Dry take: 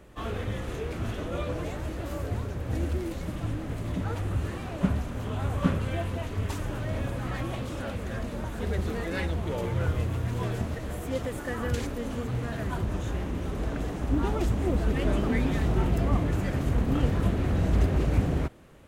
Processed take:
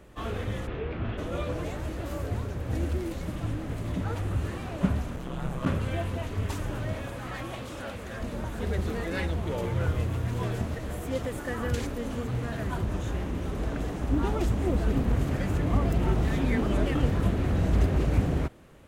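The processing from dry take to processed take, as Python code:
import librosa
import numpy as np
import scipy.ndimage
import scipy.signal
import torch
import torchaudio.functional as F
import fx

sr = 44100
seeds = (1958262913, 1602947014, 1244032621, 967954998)

y = fx.lowpass(x, sr, hz=3300.0, slope=24, at=(0.66, 1.17), fade=0.02)
y = fx.ring_mod(y, sr, carrier_hz=65.0, at=(5.16, 5.65), fade=0.02)
y = fx.low_shelf(y, sr, hz=340.0, db=-7.5, at=(6.93, 8.21))
y = fx.edit(y, sr, fx.reverse_span(start_s=14.95, length_s=2.0), tone=tone)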